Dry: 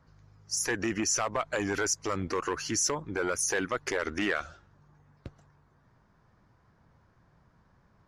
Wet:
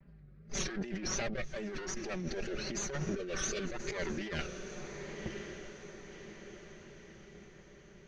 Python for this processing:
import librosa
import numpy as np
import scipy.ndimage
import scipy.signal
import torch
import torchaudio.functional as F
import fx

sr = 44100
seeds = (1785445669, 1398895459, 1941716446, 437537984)

y = fx.lower_of_two(x, sr, delay_ms=0.48)
y = fx.peak_eq(y, sr, hz=1400.0, db=-4.5, octaves=2.7)
y = fx.env_lowpass(y, sr, base_hz=1800.0, full_db=-28.5)
y = scipy.signal.sosfilt(scipy.signal.butter(4, 5200.0, 'lowpass', fs=sr, output='sos'), y)
y = y + 0.96 * np.pad(y, (int(5.2 * sr / 1000.0), 0))[:len(y)]
y = fx.vibrato(y, sr, rate_hz=2.6, depth_cents=93.0)
y = fx.spec_repair(y, sr, seeds[0], start_s=3.17, length_s=0.44, low_hz=710.0, high_hz=2200.0, source='after')
y = fx.rotary_switch(y, sr, hz=0.9, then_hz=6.3, switch_at_s=2.85)
y = fx.echo_diffused(y, sr, ms=1107, feedback_pct=50, wet_db=-15.0)
y = fx.over_compress(y, sr, threshold_db=-38.0, ratio=-1.0)
y = y * librosa.db_to_amplitude(1.0)